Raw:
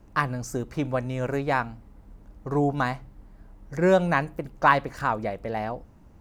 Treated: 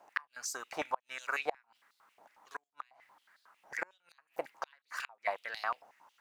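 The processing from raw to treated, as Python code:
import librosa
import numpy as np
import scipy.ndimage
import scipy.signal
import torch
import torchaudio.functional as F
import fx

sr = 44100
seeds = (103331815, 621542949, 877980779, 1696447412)

y = fx.gate_flip(x, sr, shuts_db=-16.0, range_db=-37)
y = fx.filter_held_highpass(y, sr, hz=11.0, low_hz=750.0, high_hz=4100.0)
y = y * librosa.db_to_amplitude(-2.0)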